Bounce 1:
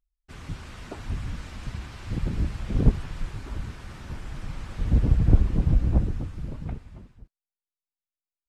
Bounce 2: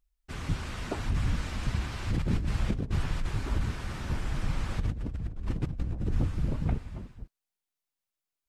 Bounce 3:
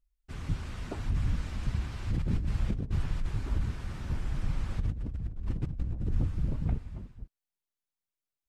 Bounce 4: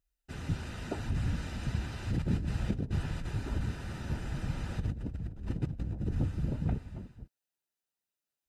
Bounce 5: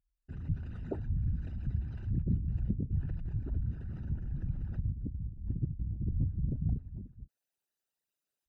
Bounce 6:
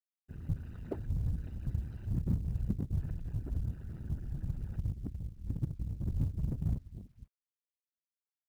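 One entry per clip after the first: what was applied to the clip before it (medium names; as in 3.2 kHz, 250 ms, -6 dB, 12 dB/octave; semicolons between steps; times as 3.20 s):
compressor with a negative ratio -29 dBFS, ratio -1
bass shelf 240 Hz +7 dB; trim -7 dB
comb of notches 1.1 kHz; trim +3 dB
resonances exaggerated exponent 2
companding laws mixed up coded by A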